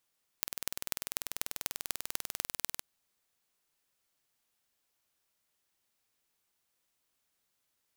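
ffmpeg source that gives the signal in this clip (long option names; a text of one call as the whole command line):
ffmpeg -f lavfi -i "aevalsrc='0.708*eq(mod(n,2172),0)*(0.5+0.5*eq(mod(n,10860),0))':duration=2.41:sample_rate=44100" out.wav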